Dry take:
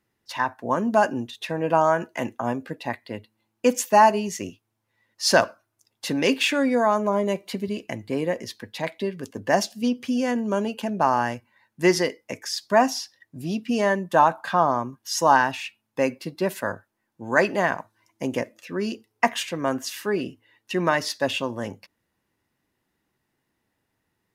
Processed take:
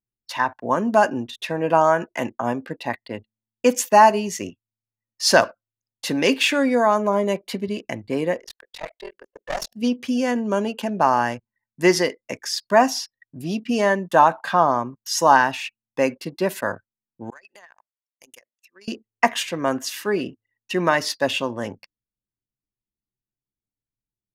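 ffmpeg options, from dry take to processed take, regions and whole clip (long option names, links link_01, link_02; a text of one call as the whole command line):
ffmpeg -i in.wav -filter_complex "[0:a]asettb=1/sr,asplit=3[link_01][link_02][link_03];[link_01]atrim=end=8.404[link_04];[link_02]atrim=start=8.4:end=9.72,asetpts=PTS-STARTPTS,afade=type=in:duration=0.004:curve=qsin,afade=type=out:start_time=1.316:duration=0.004:curve=qsin,highpass=frequency=450:width=0.5412,highpass=frequency=450:width=1.3066,aeval=exprs='(tanh(12.6*val(0)+0.65)-tanh(0.65))/12.6':channel_layout=same,aeval=exprs='val(0)*sin(2*PI*21*n/s)':channel_layout=same[link_05];[link_03]atrim=start=9.716[link_06];[link_04][link_05]acrossfade=duration=0.004:curve1=hsin:curve2=qsin[link_07];[link_07][link_06]acrossfade=duration=0.004:curve1=qsin:curve2=hsin,asettb=1/sr,asplit=3[link_08][link_09][link_10];[link_08]atrim=end=17.304[link_11];[link_09]atrim=start=17.3:end=18.88,asetpts=PTS-STARTPTS,afade=type=in:duration=0.004:curve=qsin,afade=type=out:start_time=1.576:duration=0.004:curve=qsin,aderivative,acompressor=threshold=-42dB:ratio=16:attack=3.2:release=140:knee=1:detection=peak[link_12];[link_10]atrim=start=18.876[link_13];[link_11][link_12]acrossfade=duration=0.004:curve1=hsin:curve2=qsin[link_14];[link_14][link_13]acrossfade=duration=0.004:curve1=qsin:curve2=hsin,anlmdn=0.0398,lowshelf=frequency=160:gain=-4.5,volume=3dB" out.wav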